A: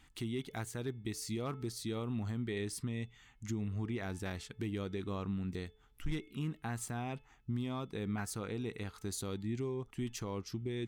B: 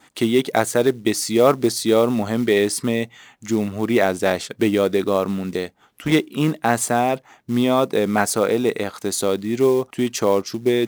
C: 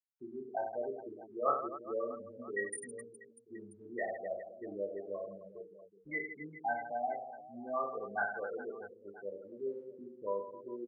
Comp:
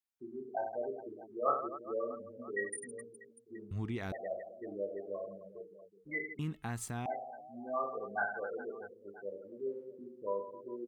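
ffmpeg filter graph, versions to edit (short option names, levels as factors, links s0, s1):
-filter_complex "[0:a]asplit=2[s0][s1];[2:a]asplit=3[s2][s3][s4];[s2]atrim=end=3.712[s5];[s0]atrim=start=3.708:end=4.122[s6];[s3]atrim=start=4.118:end=6.392[s7];[s1]atrim=start=6.388:end=7.062[s8];[s4]atrim=start=7.058[s9];[s5][s6]acrossfade=d=0.004:c1=hsin:c2=hsin[s10];[s10][s7]acrossfade=d=0.004:c1=hsin:c2=hsin[s11];[s11][s8]acrossfade=d=0.004:c1=hsin:c2=hsin[s12];[s12][s9]acrossfade=d=0.004:c1=hsin:c2=hsin"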